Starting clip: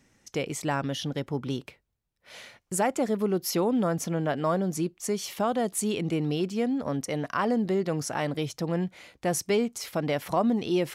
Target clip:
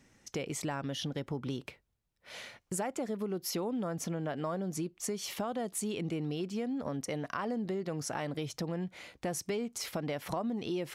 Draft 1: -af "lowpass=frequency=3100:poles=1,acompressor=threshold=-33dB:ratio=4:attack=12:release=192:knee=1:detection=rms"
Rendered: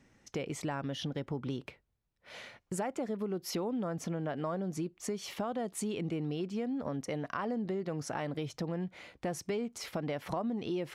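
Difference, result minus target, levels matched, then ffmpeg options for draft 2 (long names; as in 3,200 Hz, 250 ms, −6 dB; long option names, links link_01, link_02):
8,000 Hz band −4.5 dB
-af "lowpass=frequency=12000:poles=1,acompressor=threshold=-33dB:ratio=4:attack=12:release=192:knee=1:detection=rms"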